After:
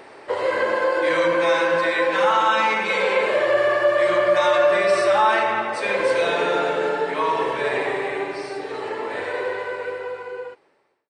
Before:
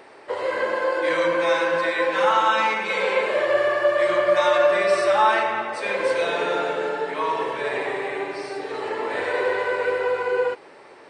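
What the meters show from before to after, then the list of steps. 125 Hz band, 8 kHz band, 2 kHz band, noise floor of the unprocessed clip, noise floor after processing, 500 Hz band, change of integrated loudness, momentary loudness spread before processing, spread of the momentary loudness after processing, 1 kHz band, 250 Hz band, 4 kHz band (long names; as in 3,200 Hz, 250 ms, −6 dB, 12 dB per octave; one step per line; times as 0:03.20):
+4.0 dB, +1.5 dB, +1.5 dB, −46 dBFS, −47 dBFS, +1.5 dB, +1.5 dB, 9 LU, 12 LU, +1.0 dB, +2.5 dB, +1.5 dB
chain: fade-out on the ending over 3.45 s
low-shelf EQ 130 Hz +5 dB
in parallel at +1 dB: brickwall limiter −15.5 dBFS, peak gain reduction 8.5 dB
on the sum: level −3.5 dB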